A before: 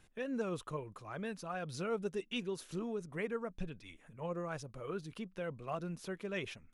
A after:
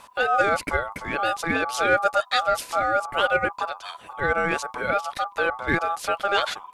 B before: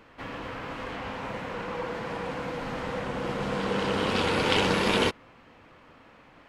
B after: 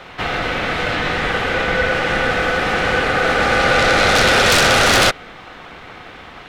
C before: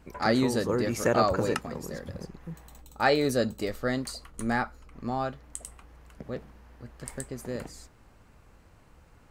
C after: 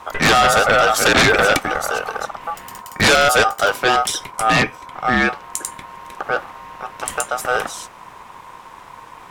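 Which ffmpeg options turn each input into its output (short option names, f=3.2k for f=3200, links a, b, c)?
-filter_complex "[0:a]acrossover=split=170[a][b];[a]acompressor=threshold=-52dB:ratio=6[c];[c][b]amix=inputs=2:normalize=0,aeval=exprs='val(0)*sin(2*PI*1000*n/s)':c=same,aeval=exprs='0.398*sin(PI/2*6.31*val(0)/0.398)':c=same"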